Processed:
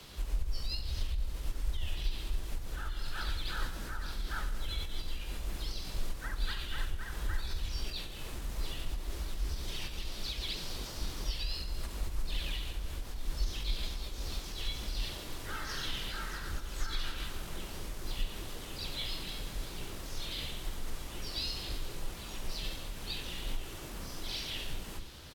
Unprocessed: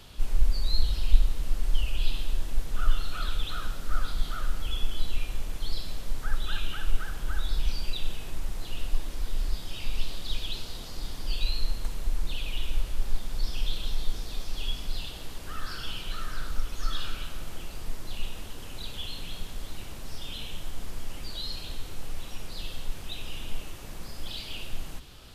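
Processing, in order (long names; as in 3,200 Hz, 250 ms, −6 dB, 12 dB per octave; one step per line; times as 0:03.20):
frequency shifter +13 Hz
low-shelf EQ 80 Hz −5 dB
notch filter 680 Hz, Q 15
downward compressor 2.5 to 1, threshold −28 dBFS, peak gain reduction 11 dB
on a send at −12 dB: thirty-one-band graphic EQ 100 Hz −7 dB, 630 Hz −11 dB, 4,000 Hz +5 dB + convolution reverb RT60 0.75 s, pre-delay 3 ms
on the sum: brickwall limiter −24.5 dBFS, peak gain reduction 6.5 dB
mains-hum notches 50/100/150/200/250 Hz
pitch-shifted copies added −7 semitones −9 dB, +3 semitones −1 dB
level −2.5 dB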